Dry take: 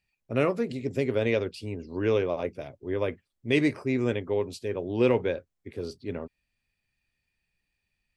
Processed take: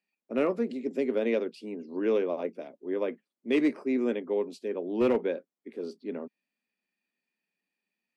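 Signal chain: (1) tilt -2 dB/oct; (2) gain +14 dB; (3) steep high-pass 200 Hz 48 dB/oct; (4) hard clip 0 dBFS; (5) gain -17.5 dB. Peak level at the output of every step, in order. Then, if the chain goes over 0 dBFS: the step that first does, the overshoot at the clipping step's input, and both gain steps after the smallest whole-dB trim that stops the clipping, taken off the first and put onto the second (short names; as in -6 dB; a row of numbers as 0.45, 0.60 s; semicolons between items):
-8.5, +5.5, +4.5, 0.0, -17.5 dBFS; step 2, 4.5 dB; step 2 +9 dB, step 5 -12.5 dB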